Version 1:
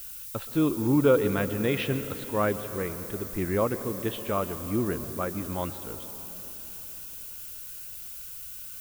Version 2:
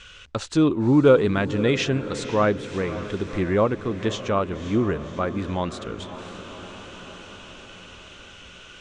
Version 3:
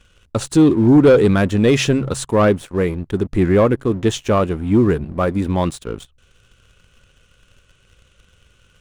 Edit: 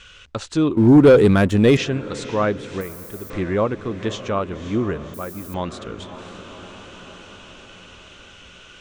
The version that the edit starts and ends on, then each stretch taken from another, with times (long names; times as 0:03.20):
2
0:00.77–0:01.77: punch in from 3
0:02.81–0:03.30: punch in from 1
0:05.14–0:05.54: punch in from 1